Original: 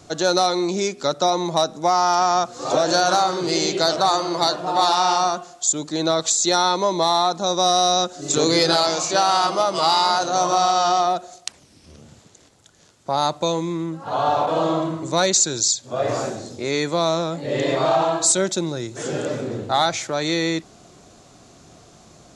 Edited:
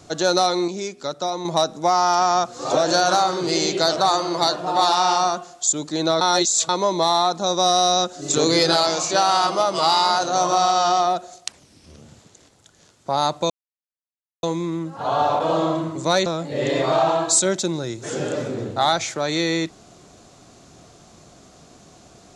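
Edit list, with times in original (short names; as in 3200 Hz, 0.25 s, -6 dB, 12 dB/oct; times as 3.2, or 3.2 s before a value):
0.68–1.45 gain -6 dB
6.21–6.69 reverse
13.5 insert silence 0.93 s
15.33–17.19 cut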